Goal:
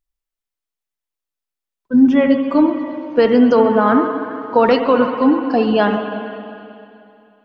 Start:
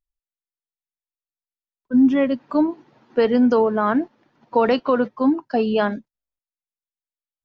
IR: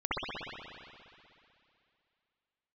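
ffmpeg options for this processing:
-filter_complex "[0:a]asplit=2[link_01][link_02];[1:a]atrim=start_sample=2205,lowshelf=frequency=360:gain=-4.5,adelay=6[link_03];[link_02][link_03]afir=irnorm=-1:irlink=0,volume=-14dB[link_04];[link_01][link_04]amix=inputs=2:normalize=0,volume=4.5dB"

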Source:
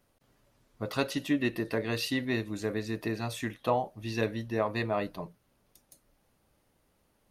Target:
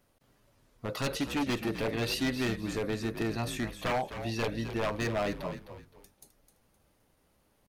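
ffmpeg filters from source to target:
ffmpeg -i in.wav -filter_complex "[0:a]aeval=exprs='0.0562*(abs(mod(val(0)/0.0562+3,4)-2)-1)':channel_layout=same,atempo=0.95,asplit=4[link_01][link_02][link_03][link_04];[link_02]adelay=259,afreqshift=-69,volume=-10.5dB[link_05];[link_03]adelay=518,afreqshift=-138,volume=-20.7dB[link_06];[link_04]adelay=777,afreqshift=-207,volume=-30.8dB[link_07];[link_01][link_05][link_06][link_07]amix=inputs=4:normalize=0,volume=1dB" out.wav

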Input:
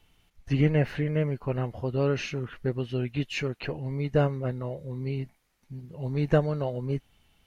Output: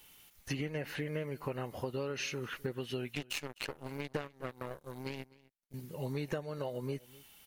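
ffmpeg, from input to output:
ffmpeg -i in.wav -filter_complex "[0:a]aemphasis=mode=production:type=bsi,bandreject=frequency=690:width=12,acompressor=threshold=-37dB:ratio=12,asettb=1/sr,asplit=3[link_01][link_02][link_03];[link_01]atrim=end=3.154[link_04];[link_02]atrim=start=3.15:end=5.74,asetpts=PTS-STARTPTS,afade=type=in:duration=0.004:curve=qsin,afade=type=out:start_time=2.586:duration=0.004:curve=qsin,aeval=exprs='0.0531*(cos(1*acos(clip(val(0)/0.0531,-1,1)))-cos(1*PI/2))+0.0075*(cos(7*acos(clip(val(0)/0.0531,-1,1)))-cos(7*PI/2))+0.000841*(cos(8*acos(clip(val(0)/0.0531,-1,1)))-cos(8*PI/2))':channel_layout=same[link_05];[link_03]atrim=start=5.736[link_06];[link_04][link_05]acrossfade=duration=0.004:curve1=hsin:curve2=qsin[link_07];[link_07][link_06]acrossfade=duration=0.004:curve1=qsin:curve2=hsin,aecho=1:1:255:0.0794,volume=3.5dB" out.wav

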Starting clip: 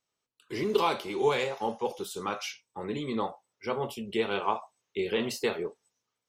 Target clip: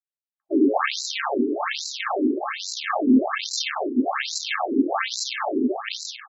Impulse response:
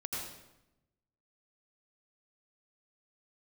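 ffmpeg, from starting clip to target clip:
-af "agate=range=-36dB:threshold=-49dB:ratio=16:detection=peak,flanger=delay=3.4:depth=8.7:regen=11:speed=0.64:shape=triangular,aresample=16000,acrusher=samples=33:mix=1:aa=0.000001,aresample=44100,aeval=exprs='(mod(10*val(0)+1,2)-1)/10':channel_layout=same,adynamicequalizer=threshold=0.00251:dfrequency=560:dqfactor=1.5:tfrequency=560:tqfactor=1.5:attack=5:release=100:ratio=0.375:range=3:mode=cutabove:tftype=bell,volume=31.5dB,asoftclip=hard,volume=-31.5dB,aecho=1:1:435|870|1305|1740|2175:0.596|0.214|0.0772|0.0278|0.01,alimiter=level_in=34dB:limit=-1dB:release=50:level=0:latency=1,afftfilt=real='re*between(b*sr/1024,310*pow(5500/310,0.5+0.5*sin(2*PI*1.2*pts/sr))/1.41,310*pow(5500/310,0.5+0.5*sin(2*PI*1.2*pts/sr))*1.41)':imag='im*between(b*sr/1024,310*pow(5500/310,0.5+0.5*sin(2*PI*1.2*pts/sr))/1.41,310*pow(5500/310,0.5+0.5*sin(2*PI*1.2*pts/sr))*1.41)':win_size=1024:overlap=0.75,volume=-3dB"

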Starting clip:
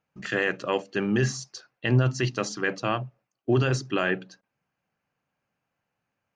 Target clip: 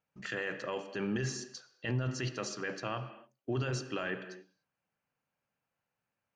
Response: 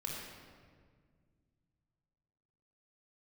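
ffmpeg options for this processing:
-filter_complex "[0:a]asplit=2[link_01][link_02];[link_02]highpass=frequency=220:width=0.5412,highpass=frequency=220:width=1.3066[link_03];[1:a]atrim=start_sample=2205,afade=type=out:start_time=0.35:duration=0.01,atrim=end_sample=15876[link_04];[link_03][link_04]afir=irnorm=-1:irlink=0,volume=-10.5dB[link_05];[link_01][link_05]amix=inputs=2:normalize=0,alimiter=limit=-18dB:level=0:latency=1:release=11,volume=-7.5dB"

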